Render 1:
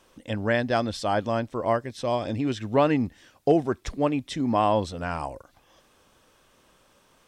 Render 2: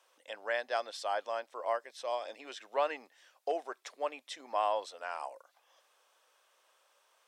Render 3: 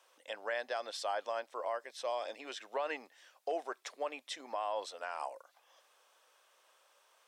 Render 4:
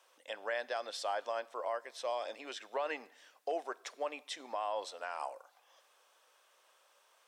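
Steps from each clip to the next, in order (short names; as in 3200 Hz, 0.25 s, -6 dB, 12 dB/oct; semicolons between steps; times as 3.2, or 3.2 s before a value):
HPF 540 Hz 24 dB/oct; gain -7.5 dB
limiter -28 dBFS, peak gain reduction 9.5 dB; gain +1.5 dB
plate-style reverb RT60 0.95 s, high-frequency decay 1×, DRR 20 dB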